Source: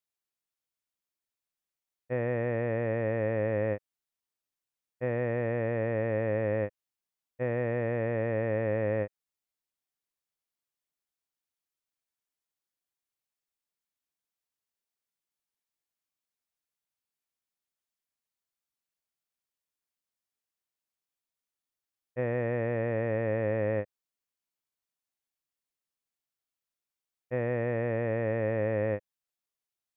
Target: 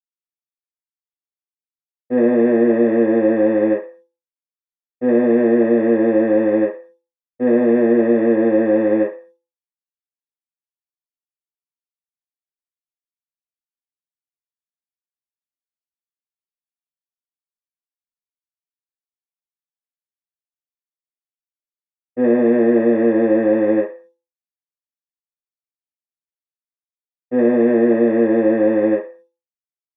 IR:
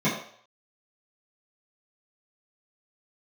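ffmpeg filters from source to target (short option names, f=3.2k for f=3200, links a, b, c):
-filter_complex "[0:a]bandreject=f=169.7:t=h:w=4,bandreject=f=339.4:t=h:w=4,bandreject=f=509.1:t=h:w=4,bandreject=f=678.8:t=h:w=4,bandreject=f=848.5:t=h:w=4,bandreject=f=1.0182k:t=h:w=4,agate=range=-33dB:threshold=-55dB:ratio=3:detection=peak[a];[1:a]atrim=start_sample=2205,asetrate=70560,aresample=44100[b];[a][b]afir=irnorm=-1:irlink=0,volume=-1.5dB"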